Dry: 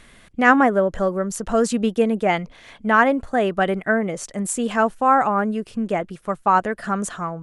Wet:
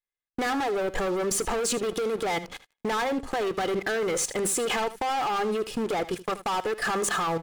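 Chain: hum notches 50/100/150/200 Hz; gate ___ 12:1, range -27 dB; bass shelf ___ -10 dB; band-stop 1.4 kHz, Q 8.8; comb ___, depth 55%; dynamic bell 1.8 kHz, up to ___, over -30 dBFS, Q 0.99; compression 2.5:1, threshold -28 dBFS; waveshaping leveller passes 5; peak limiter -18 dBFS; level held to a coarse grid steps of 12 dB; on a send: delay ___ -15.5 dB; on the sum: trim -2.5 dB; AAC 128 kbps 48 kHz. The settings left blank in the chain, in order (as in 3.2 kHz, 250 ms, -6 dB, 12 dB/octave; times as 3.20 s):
-39 dBFS, 270 Hz, 2.4 ms, -3 dB, 78 ms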